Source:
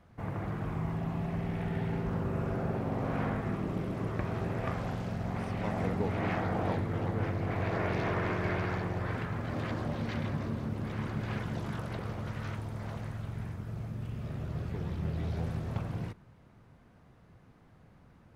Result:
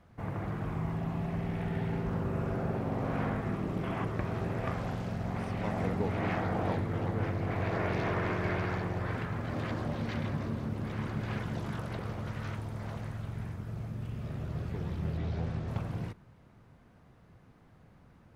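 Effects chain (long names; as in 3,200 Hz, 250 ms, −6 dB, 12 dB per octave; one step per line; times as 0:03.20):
0:03.84–0:04.05: gain on a spectral selection 650–3,500 Hz +8 dB
0:15.17–0:15.68: low-pass filter 5,900 Hz 12 dB per octave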